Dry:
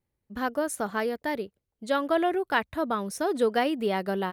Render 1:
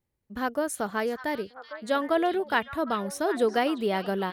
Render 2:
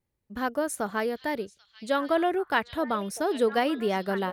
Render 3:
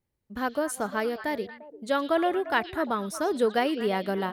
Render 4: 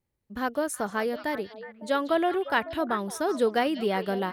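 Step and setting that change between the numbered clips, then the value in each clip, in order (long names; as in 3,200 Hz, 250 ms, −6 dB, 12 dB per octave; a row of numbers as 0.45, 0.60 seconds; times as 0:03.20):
echo through a band-pass that steps, delay time: 379, 788, 116, 185 milliseconds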